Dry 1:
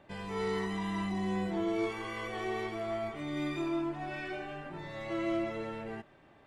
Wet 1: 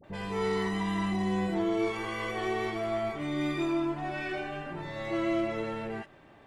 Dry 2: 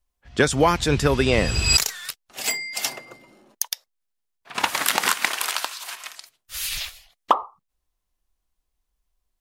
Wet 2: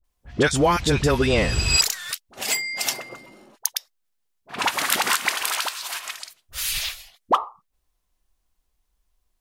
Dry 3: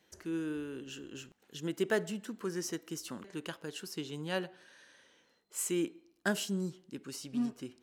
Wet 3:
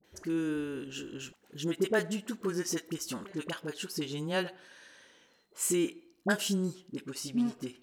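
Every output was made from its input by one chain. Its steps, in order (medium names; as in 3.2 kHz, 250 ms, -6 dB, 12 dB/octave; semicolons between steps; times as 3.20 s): in parallel at +1 dB: compression, threshold -30 dBFS; on the sum: phase dispersion highs, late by 41 ms, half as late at 810 Hz; trim -2 dB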